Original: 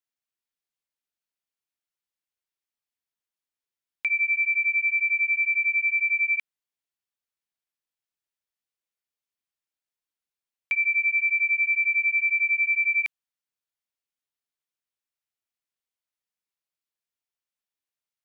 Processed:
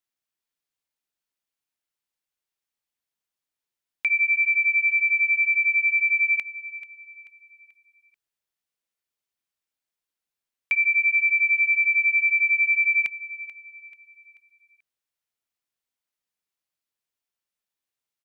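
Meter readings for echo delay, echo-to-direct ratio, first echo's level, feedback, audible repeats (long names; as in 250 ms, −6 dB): 436 ms, −15.5 dB, −16.0 dB, 40%, 3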